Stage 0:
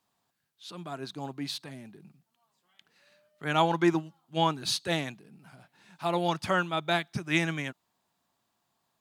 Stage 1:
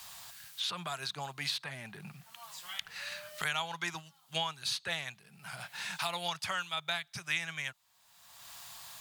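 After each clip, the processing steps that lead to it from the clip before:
guitar amp tone stack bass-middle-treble 10-0-10
multiband upward and downward compressor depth 100%
level +2.5 dB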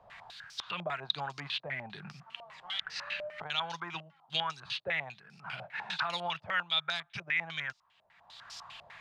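brickwall limiter −25.5 dBFS, peak gain reduction 9 dB
low-pass on a step sequencer 10 Hz 600–5,300 Hz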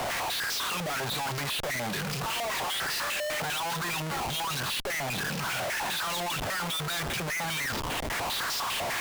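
power curve on the samples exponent 0.35
comparator with hysteresis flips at −35 dBFS
bass and treble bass −3 dB, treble 0 dB
level −4 dB

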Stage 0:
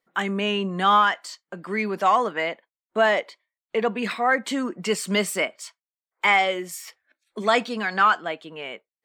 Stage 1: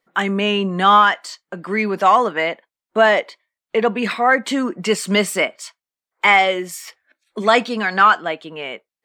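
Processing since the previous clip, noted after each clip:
high-shelf EQ 7,200 Hz −4 dB
level +6 dB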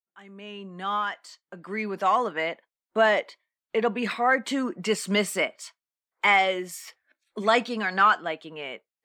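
fade in at the beginning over 2.72 s
level −7 dB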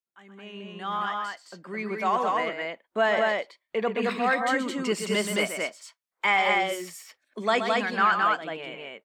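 loudspeakers that aren't time-aligned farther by 43 metres −8 dB, 74 metres −2 dB
level −3 dB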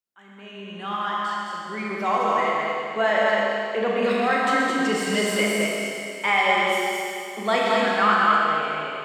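four-comb reverb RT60 2.7 s, combs from 26 ms, DRR −2.5 dB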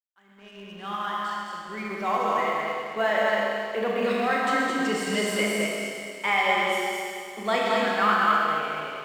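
mu-law and A-law mismatch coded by A
level −2.5 dB

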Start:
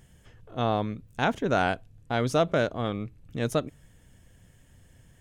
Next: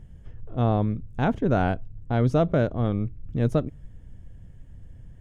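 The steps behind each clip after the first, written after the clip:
spectral tilt −3.5 dB per octave
level −2 dB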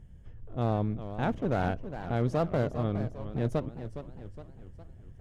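asymmetric clip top −28 dBFS, bottom −11 dBFS
feedback echo with a swinging delay time 408 ms, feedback 49%, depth 184 cents, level −11 dB
level −5 dB

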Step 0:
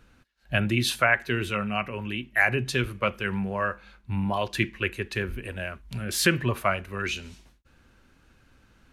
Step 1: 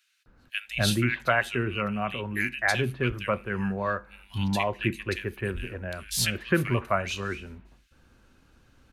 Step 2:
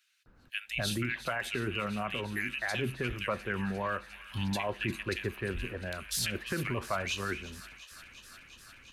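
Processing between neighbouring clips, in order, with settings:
multiband delay without the direct sound highs, lows 260 ms, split 2,000 Hz
brickwall limiter −20.5 dBFS, peak gain reduction 11 dB; harmonic and percussive parts rebalanced harmonic −5 dB; delay with a high-pass on its return 352 ms, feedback 84%, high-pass 1,700 Hz, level −15 dB

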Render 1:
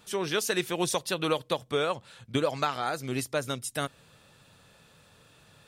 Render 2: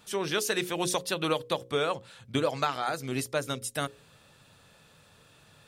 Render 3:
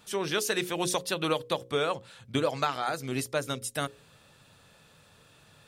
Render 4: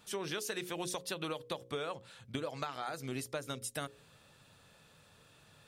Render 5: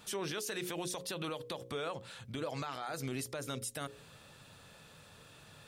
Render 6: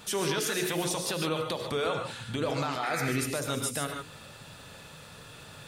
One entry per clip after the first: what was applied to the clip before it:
mains-hum notches 60/120/180/240/300/360/420/480/540 Hz
no processing that can be heard
downward compressor, threshold −31 dBFS, peak gain reduction 9 dB; level −4 dB
brickwall limiter −35 dBFS, peak gain reduction 10.5 dB; level +5.5 dB
sound drawn into the spectrogram noise, 0:02.83–0:03.13, 1,200–2,600 Hz −45 dBFS; reverb whose tail is shaped and stops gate 170 ms rising, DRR 3.5 dB; level +7.5 dB

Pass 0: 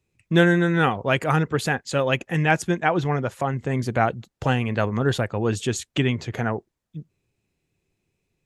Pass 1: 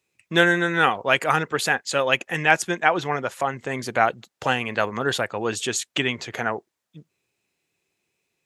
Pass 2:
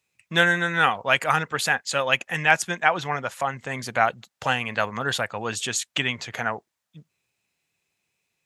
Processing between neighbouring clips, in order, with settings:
high-pass filter 810 Hz 6 dB per octave; level +5 dB
parametric band 360 Hz −9 dB 0.94 octaves

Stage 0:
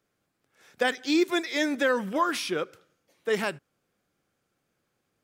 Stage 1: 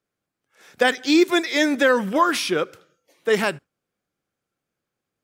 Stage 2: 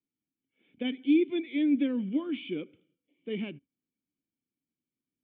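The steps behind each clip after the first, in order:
noise reduction from a noise print of the clip's start 13 dB; level +7 dB
formant resonators in series i

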